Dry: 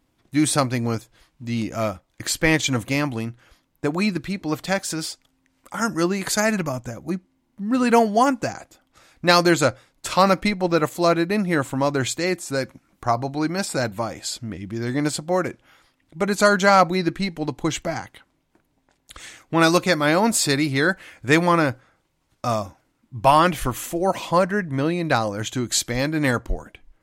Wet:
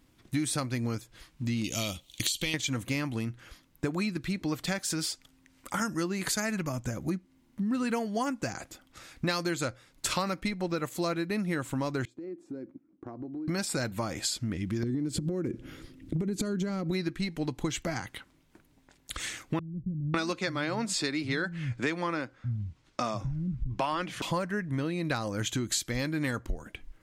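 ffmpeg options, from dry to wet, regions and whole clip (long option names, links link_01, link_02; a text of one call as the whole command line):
ffmpeg -i in.wav -filter_complex "[0:a]asettb=1/sr,asplit=3[link_01][link_02][link_03];[link_01]atrim=end=1.644[link_04];[link_02]atrim=start=1.64:end=2.54,asetpts=PTS-STARTPTS,afade=type=in:duration=0.004:curve=qsin,afade=type=out:start_time=0.896:duration=0.004:curve=qsin,highshelf=frequency=2300:width_type=q:width=3:gain=12,acompressor=threshold=-19dB:ratio=4:attack=3.2:release=140:knee=1:detection=peak,bandreject=frequency=5000:width=6.9[link_05];[link_03]atrim=start=2.536[link_06];[link_04][link_05]acrossfade=duration=0.004:curve1=hsin:curve2=qsin[link_07];[link_07][link_06]acrossfade=duration=0.004:curve1=qsin:curve2=hsin,asettb=1/sr,asplit=3[link_08][link_09][link_10];[link_08]atrim=end=12.054[link_11];[link_09]atrim=start=12.05:end=13.48,asetpts=PTS-STARTPTS,afade=type=in:duration=0.004:curve=qsin,afade=type=out:start_time=1.426:duration=0.004:curve=qsin,bandpass=frequency=310:width_type=q:width=3.5,acompressor=threshold=-38dB:ratio=10:attack=3.2:release=140:knee=1:detection=peak[link_12];[link_10]atrim=start=13.476[link_13];[link_11][link_12]acrossfade=duration=0.004:curve1=hsin:curve2=qsin[link_14];[link_14][link_13]acrossfade=duration=0.004:curve1=qsin:curve2=hsin,asettb=1/sr,asplit=3[link_15][link_16][link_17];[link_15]atrim=end=14.834[link_18];[link_16]atrim=start=14.83:end=16.91,asetpts=PTS-STARTPTS,afade=type=in:duration=0.004:curve=qsin,afade=type=out:start_time=2.076:duration=0.004:curve=qsin,lowshelf=frequency=540:width_type=q:width=1.5:gain=14,acompressor=threshold=-21dB:ratio=12:attack=3.2:release=140:knee=1:detection=peak[link_19];[link_17]atrim=start=16.906[link_20];[link_18][link_19]acrossfade=duration=0.004:curve1=hsin:curve2=qsin[link_21];[link_21][link_20]acrossfade=duration=0.004:curve1=qsin:curve2=hsin,asettb=1/sr,asplit=3[link_22][link_23][link_24];[link_22]atrim=end=19.594[link_25];[link_23]atrim=start=19.59:end=24.22,asetpts=PTS-STARTPTS,afade=type=in:duration=0.004:curve=qsin,afade=type=out:start_time=4.626:duration=0.004:curve=qsin,lowpass=6000,acrossover=split=160[link_26][link_27];[link_27]adelay=550[link_28];[link_26][link_28]amix=inputs=2:normalize=0,atrim=end_sample=204183[link_29];[link_24]atrim=start=24.216[link_30];[link_25][link_29]acrossfade=duration=0.004:curve1=hsin:curve2=qsin[link_31];[link_31][link_30]acrossfade=duration=0.004:curve1=qsin:curve2=hsin,equalizer=frequency=720:width_type=o:width=1.3:gain=-6,acompressor=threshold=-33dB:ratio=6,volume=4.5dB" out.wav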